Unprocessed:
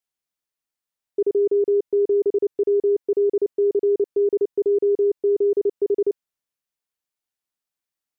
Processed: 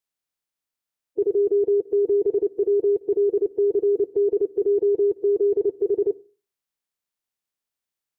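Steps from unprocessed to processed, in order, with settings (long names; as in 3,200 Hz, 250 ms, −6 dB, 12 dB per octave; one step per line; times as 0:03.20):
spectral magnitudes quantised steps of 30 dB
on a send: convolution reverb RT60 0.35 s, pre-delay 48 ms, DRR 19.5 dB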